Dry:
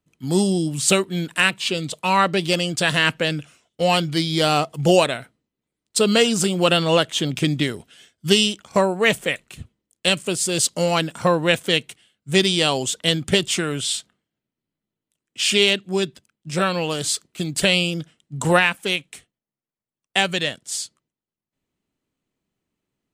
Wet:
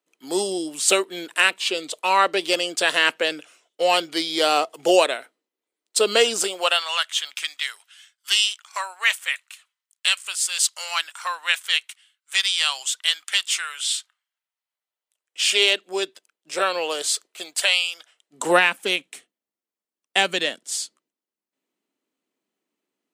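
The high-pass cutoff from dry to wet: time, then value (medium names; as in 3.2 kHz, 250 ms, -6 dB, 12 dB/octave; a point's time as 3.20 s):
high-pass 24 dB/octave
6.38 s 350 Hz
6.93 s 1.1 kHz
13.97 s 1.1 kHz
15.81 s 400 Hz
17.26 s 400 Hz
17.89 s 1 kHz
18.55 s 250 Hz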